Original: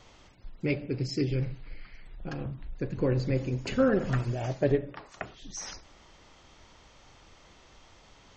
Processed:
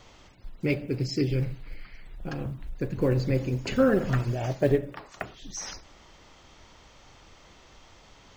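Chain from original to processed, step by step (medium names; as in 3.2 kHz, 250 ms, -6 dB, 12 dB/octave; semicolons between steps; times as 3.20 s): block-companded coder 7-bit; trim +2.5 dB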